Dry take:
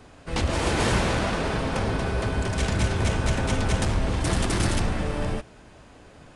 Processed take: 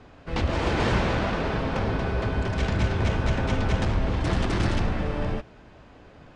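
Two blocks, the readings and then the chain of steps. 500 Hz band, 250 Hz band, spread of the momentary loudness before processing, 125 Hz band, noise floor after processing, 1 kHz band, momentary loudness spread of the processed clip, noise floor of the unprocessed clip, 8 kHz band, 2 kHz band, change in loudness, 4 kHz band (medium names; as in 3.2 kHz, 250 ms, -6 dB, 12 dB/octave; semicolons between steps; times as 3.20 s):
-0.5 dB, 0.0 dB, 5 LU, 0.0 dB, -50 dBFS, -0.5 dB, 5 LU, -50 dBFS, -12.0 dB, -1.5 dB, -0.5 dB, -3.5 dB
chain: distance through air 140 m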